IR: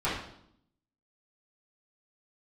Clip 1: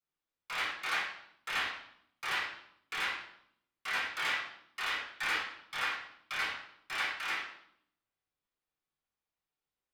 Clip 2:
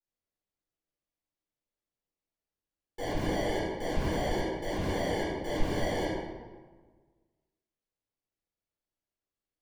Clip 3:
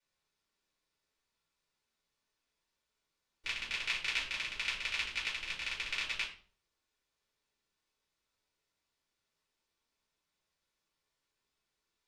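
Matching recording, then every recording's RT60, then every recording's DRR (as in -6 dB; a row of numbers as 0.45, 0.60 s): 1; 0.70, 1.4, 0.45 s; -12.0, -11.5, -7.5 dB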